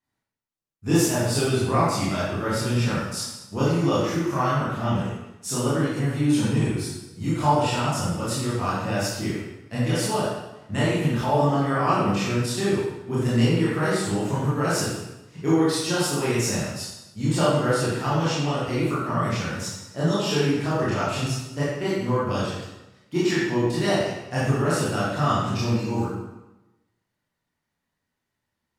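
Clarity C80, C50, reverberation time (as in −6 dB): 1.0 dB, −2.0 dB, 1.0 s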